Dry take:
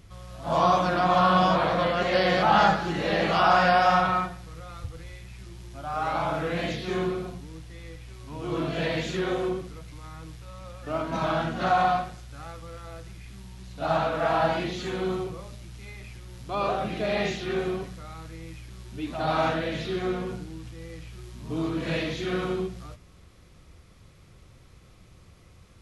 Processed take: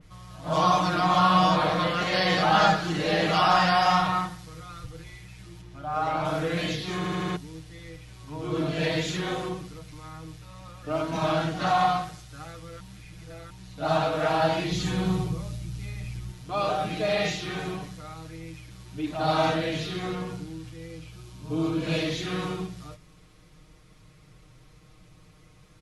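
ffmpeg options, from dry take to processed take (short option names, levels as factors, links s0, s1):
-filter_complex "[0:a]asettb=1/sr,asplit=3[s0][s1][s2];[s0]atrim=end=5.614[s3];[s1]atrim=start=5.61:end=6.25,asetpts=PTS-STARTPTS,afade=t=in:d=0.004:c=qsin,afade=t=out:st=0.636:d=0.004:c=qsin,highshelf=f=4500:g=-11[s4];[s2]atrim=start=6.246[s5];[s3][s4]acrossfade=d=0.004:c1=hsin:c2=qsin[s6];[s6][s5]acrossfade=d=0.004:c1=qsin:c2=hsin,asettb=1/sr,asplit=3[s7][s8][s9];[s7]atrim=end=14.714[s10];[s8]atrim=start=14.71:end=16.32,asetpts=PTS-STARTPTS,afade=t=in:d=0.004:c=qsin,afade=t=out:st=1.606:d=0.004:c=qsin,bass=f=250:g=11,treble=f=4000:g=3[s11];[s9]atrim=start=16.316[s12];[s10][s11]acrossfade=d=0.004:c1=hsin:c2=qsin[s13];[s13][s12]acrossfade=d=0.004:c1=qsin:c2=hsin,asettb=1/sr,asplit=3[s14][s15][s16];[s14]atrim=end=20.874[s17];[s15]atrim=start=20.87:end=22.04,asetpts=PTS-STARTPTS,afade=t=in:d=0.004:c=qsin,afade=t=out:st=1.166:d=0.004:c=qsin,bandreject=f=1900:w=6.4[s18];[s16]atrim=start=22.036[s19];[s17][s18]acrossfade=d=0.004:c1=hsin:c2=qsin[s20];[s20][s19]acrossfade=d=0.004:c1=qsin:c2=hsin,asplit=8[s21][s22][s23][s24][s25][s26][s27][s28];[s21]atrim=end=7.042[s29];[s22]atrim=start=6.958:end=7.042[s30];[s23]atrim=start=6.958:end=7.042[s31];[s24]atrim=start=6.958:end=7.042[s32];[s25]atrim=start=6.958:end=7.042[s33];[s26]atrim=start=7.358:end=12.802[s34];[s27]atrim=start=12.798:end=13.502,asetpts=PTS-STARTPTS,areverse[s35];[s28]atrim=start=13.498[s36];[s29][s30]acrossfade=d=0.004:c1=hsin:c2=hsin[s37];[s37][s31]acrossfade=d=0.004:c1=hsin:c2=hsin[s38];[s38][s32]acrossfade=d=0.004:c1=hsin:c2=hsin[s39];[s39][s33]acrossfade=d=0.004:c1=hsin:c2=hsin[s40];[s40][s34]acrossfade=d=0.004:c1=hsin:c2=hsin[s41];[s41][s35]acrossfade=d=0.004:c1=hsin:c2=hsin[s42];[s42][s36]acrossfade=d=0.004:c1=hsin:c2=hsin,aecho=1:1:6.5:0.82,adynamicequalizer=threshold=0.0126:dfrequency=3100:dqfactor=0.7:tfrequency=3100:tqfactor=0.7:attack=5:release=100:ratio=0.375:range=3:mode=boostabove:tftype=highshelf,volume=0.75"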